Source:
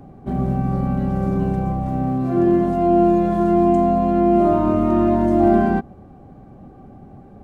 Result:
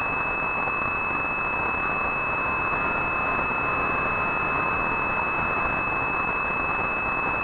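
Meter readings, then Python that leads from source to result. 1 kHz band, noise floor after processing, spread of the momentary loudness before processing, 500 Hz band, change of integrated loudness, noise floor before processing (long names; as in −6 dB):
−2.0 dB, −27 dBFS, 7 LU, −12.5 dB, −6.0 dB, −44 dBFS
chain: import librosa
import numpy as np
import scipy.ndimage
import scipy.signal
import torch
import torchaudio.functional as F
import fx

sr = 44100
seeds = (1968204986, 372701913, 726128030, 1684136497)

y = np.sign(x) * np.sqrt(np.mean(np.square(x)))
y = scipy.signal.sosfilt(scipy.signal.butter(8, 1000.0, 'highpass', fs=sr, output='sos'), y)
y = fx.pwm(y, sr, carrier_hz=2600.0)
y = F.gain(torch.from_numpy(y), 5.0).numpy()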